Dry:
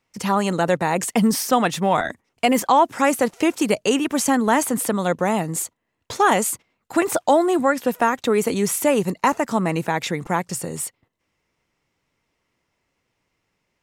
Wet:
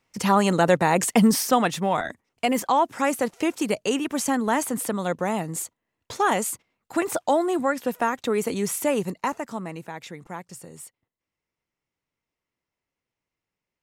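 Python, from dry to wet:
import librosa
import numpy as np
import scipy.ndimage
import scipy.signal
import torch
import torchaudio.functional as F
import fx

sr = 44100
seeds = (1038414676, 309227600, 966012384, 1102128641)

y = fx.gain(x, sr, db=fx.line((1.18, 1.0), (1.97, -5.0), (8.98, -5.0), (9.83, -14.0)))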